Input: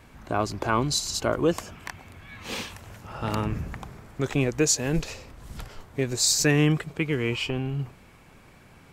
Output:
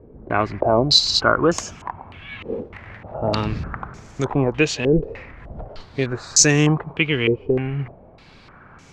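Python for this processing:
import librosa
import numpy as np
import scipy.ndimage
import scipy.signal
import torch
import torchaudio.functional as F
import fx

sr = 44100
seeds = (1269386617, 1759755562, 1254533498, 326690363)

y = fx.self_delay(x, sr, depth_ms=0.9, at=(2.6, 3.14))
y = fx.filter_held_lowpass(y, sr, hz=3.3, low_hz=440.0, high_hz=6400.0)
y = y * 10.0 ** (4.0 / 20.0)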